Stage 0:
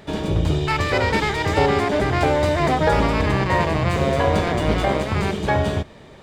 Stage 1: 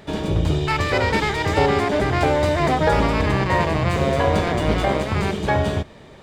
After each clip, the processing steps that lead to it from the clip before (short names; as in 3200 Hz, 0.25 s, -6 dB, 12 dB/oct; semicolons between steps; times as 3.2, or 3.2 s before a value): nothing audible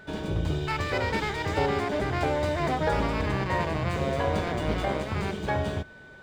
median filter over 3 samples; whine 1500 Hz -40 dBFS; gain -8 dB